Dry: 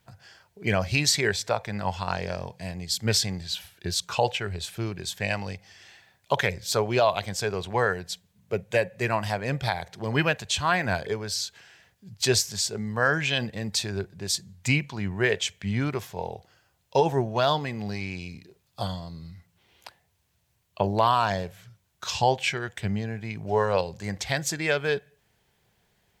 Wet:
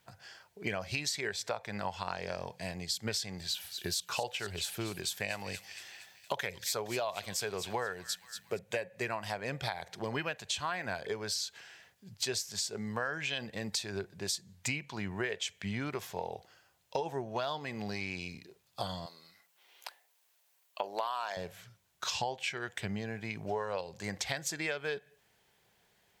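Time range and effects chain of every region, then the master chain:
0:03.38–0:08.59: high-shelf EQ 11,000 Hz +11 dB + delay with a high-pass on its return 233 ms, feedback 52%, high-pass 2,800 Hz, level −11 dB
0:19.06–0:21.37: high-pass filter 530 Hz + high-shelf EQ 11,000 Hz +7.5 dB
whole clip: low-shelf EQ 190 Hz −11 dB; downward compressor 6 to 1, threshold −32 dBFS

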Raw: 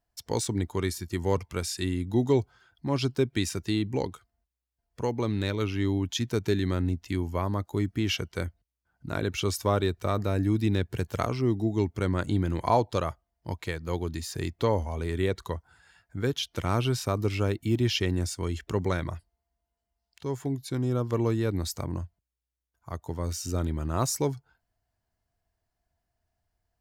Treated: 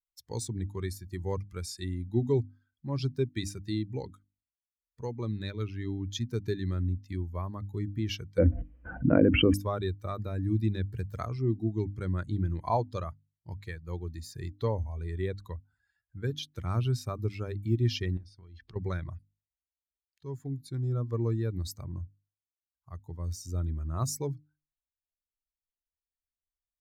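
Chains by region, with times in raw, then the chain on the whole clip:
0:08.38–0:09.54: linear-phase brick-wall low-pass 3,200 Hz + hollow resonant body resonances 280/500 Hz, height 17 dB, ringing for 35 ms + envelope flattener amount 70%
0:18.17–0:18.76: high-shelf EQ 3,000 Hz +7 dB + downward compressor 16 to 1, threshold −35 dBFS + Savitzky-Golay smoothing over 15 samples
whole clip: spectral dynamics exaggerated over time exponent 1.5; low-shelf EQ 190 Hz +9 dB; mains-hum notches 50/100/150/200/250/300 Hz; level −4 dB

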